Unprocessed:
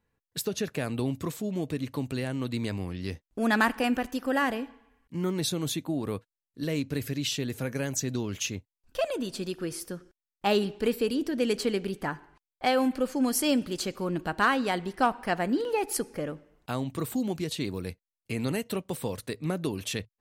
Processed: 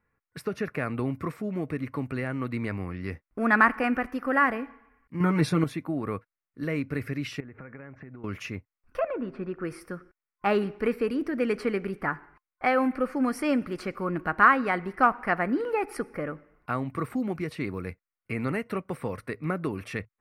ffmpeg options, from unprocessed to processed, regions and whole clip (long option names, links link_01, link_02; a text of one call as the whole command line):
ffmpeg -i in.wav -filter_complex "[0:a]asettb=1/sr,asplit=3[link_01][link_02][link_03];[link_01]atrim=end=5.204[link_04];[link_02]atrim=start=5.2:end=5.64,asetpts=PTS-STARTPTS,afade=type=in:duration=0.004:curve=qsin,afade=type=out:start_time=0.436:duration=0.004:curve=qsin,aecho=1:1:6.7:0.67,atrim=end_sample=19404,acontrast=31[link_05];[link_03]atrim=start=5.636[link_06];[link_04][link_05]acrossfade=duration=0.004:curve1=hsin:curve2=qsin[link_07];[link_07][link_06]acrossfade=duration=0.004:curve1=qsin:curve2=hsin,asettb=1/sr,asplit=3[link_08][link_09][link_10];[link_08]atrim=end=7.404[link_11];[link_09]atrim=start=7.4:end=8.24,asetpts=PTS-STARTPTS,afade=type=in:duration=0.004:curve=qsin,afade=type=out:start_time=0.836:duration=0.004:curve=qsin,lowpass=frequency=2200:width=0.5412,lowpass=frequency=2200:width=1.3066,acompressor=threshold=-40dB:ratio=12:attack=3.2:release=140:knee=1:detection=peak[link_12];[link_10]atrim=start=8.236[link_13];[link_11][link_12]acrossfade=duration=0.004:curve1=hsin:curve2=qsin[link_14];[link_14][link_13]acrossfade=duration=0.004:curve1=qsin:curve2=hsin,asettb=1/sr,asplit=3[link_15][link_16][link_17];[link_15]atrim=end=8.994[link_18];[link_16]atrim=start=8.99:end=9.65,asetpts=PTS-STARTPTS,afade=type=in:duration=0.004:curve=qsin,afade=type=out:start_time=0.656:duration=0.004:curve=qsin,lowpass=1900,bandreject=frequency=131.4:width_type=h:width=4,bandreject=frequency=262.8:width_type=h:width=4,bandreject=frequency=394.2:width_type=h:width=4,bandreject=frequency=525.6:width_type=h:width=4[link_19];[link_17]atrim=start=9.646[link_20];[link_18][link_19]acrossfade=duration=0.004:curve1=hsin:curve2=qsin[link_21];[link_21][link_20]acrossfade=duration=0.004:curve1=qsin:curve2=hsin,superequalizer=10b=2:15b=0.355,acrossover=split=9800[link_22][link_23];[link_23]acompressor=threshold=-56dB:ratio=4:attack=1:release=60[link_24];[link_22][link_24]amix=inputs=2:normalize=0,highshelf=frequency=2700:width_type=q:width=3:gain=-8" out.wav